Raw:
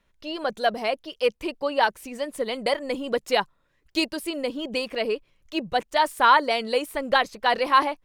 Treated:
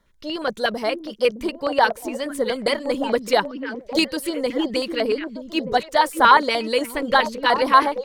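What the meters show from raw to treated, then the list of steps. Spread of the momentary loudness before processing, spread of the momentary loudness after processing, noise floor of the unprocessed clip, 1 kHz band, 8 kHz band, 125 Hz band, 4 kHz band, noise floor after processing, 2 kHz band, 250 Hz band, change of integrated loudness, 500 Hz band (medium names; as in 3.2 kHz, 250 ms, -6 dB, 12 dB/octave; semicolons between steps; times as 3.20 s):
10 LU, 11 LU, -68 dBFS, +3.5 dB, +5.0 dB, no reading, +3.0 dB, -45 dBFS, +3.5 dB, +6.0 dB, +4.0 dB, +4.0 dB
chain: repeats whose band climbs or falls 614 ms, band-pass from 260 Hz, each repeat 1.4 oct, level -4 dB; LFO notch square 8.4 Hz 720–2600 Hz; trim +5 dB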